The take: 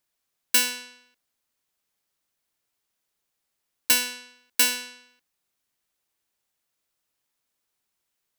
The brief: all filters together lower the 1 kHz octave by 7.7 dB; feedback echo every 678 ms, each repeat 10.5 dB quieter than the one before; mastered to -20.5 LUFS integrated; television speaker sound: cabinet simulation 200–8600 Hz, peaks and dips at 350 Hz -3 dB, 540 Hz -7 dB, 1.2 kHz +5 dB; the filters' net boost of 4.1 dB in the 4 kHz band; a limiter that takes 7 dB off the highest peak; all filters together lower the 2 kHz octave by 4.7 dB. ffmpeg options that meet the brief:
-af "equalizer=f=1000:t=o:g=-8,equalizer=f=2000:t=o:g=-8.5,equalizer=f=4000:t=o:g=7.5,alimiter=limit=0.251:level=0:latency=1,highpass=f=200:w=0.5412,highpass=f=200:w=1.3066,equalizer=f=350:t=q:w=4:g=-3,equalizer=f=540:t=q:w=4:g=-7,equalizer=f=1200:t=q:w=4:g=5,lowpass=f=8600:w=0.5412,lowpass=f=8600:w=1.3066,aecho=1:1:678|1356|2034:0.299|0.0896|0.0269,volume=2.66"

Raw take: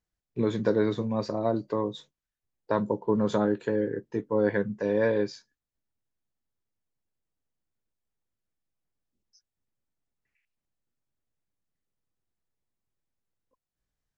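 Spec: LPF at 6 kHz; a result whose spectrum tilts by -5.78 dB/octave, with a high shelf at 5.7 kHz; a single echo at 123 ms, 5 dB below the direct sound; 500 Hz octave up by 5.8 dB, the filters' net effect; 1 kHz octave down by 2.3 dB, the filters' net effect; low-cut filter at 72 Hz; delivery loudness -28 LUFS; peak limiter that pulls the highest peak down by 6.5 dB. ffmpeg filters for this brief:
-af "highpass=72,lowpass=6000,equalizer=f=500:t=o:g=8,equalizer=f=1000:t=o:g=-6,highshelf=f=5700:g=-6.5,alimiter=limit=0.178:level=0:latency=1,aecho=1:1:123:0.562,volume=0.708"

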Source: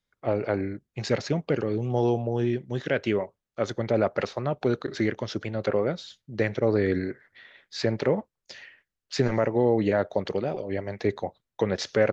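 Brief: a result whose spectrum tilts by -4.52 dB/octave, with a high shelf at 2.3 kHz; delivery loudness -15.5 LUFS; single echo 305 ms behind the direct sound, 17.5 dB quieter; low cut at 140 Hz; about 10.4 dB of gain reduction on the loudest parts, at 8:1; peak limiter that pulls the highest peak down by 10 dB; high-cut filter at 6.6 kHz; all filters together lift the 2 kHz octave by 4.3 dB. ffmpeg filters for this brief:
-af "highpass=140,lowpass=6600,equalizer=f=2000:t=o:g=8,highshelf=f=2300:g=-6,acompressor=threshold=0.0355:ratio=8,alimiter=level_in=1.19:limit=0.0631:level=0:latency=1,volume=0.841,aecho=1:1:305:0.133,volume=12.6"

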